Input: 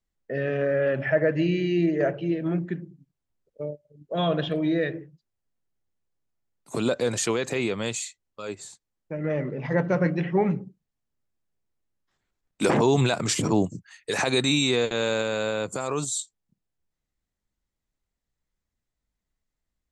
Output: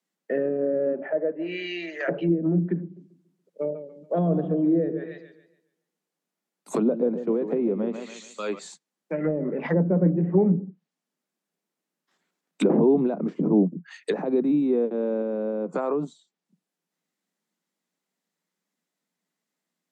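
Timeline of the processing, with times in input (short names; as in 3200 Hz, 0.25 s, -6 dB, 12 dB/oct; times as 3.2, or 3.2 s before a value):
0.92–2.07 HPF 320 Hz -> 1300 Hz
2.82–8.59 warbling echo 0.141 s, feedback 35%, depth 96 cents, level -10.5 dB
whole clip: steep high-pass 160 Hz 96 dB/oct; treble ducked by the level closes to 410 Hz, closed at -23.5 dBFS; gain +5 dB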